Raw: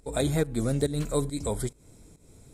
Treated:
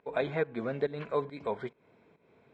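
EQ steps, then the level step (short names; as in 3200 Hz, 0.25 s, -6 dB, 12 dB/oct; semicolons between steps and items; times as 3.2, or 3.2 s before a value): speaker cabinet 240–2000 Hz, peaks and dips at 300 Hz -9 dB, 550 Hz -4 dB, 800 Hz -5 dB, 1300 Hz -9 dB, 1900 Hz -7 dB; tilt shelf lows -8 dB, about 700 Hz; +4.0 dB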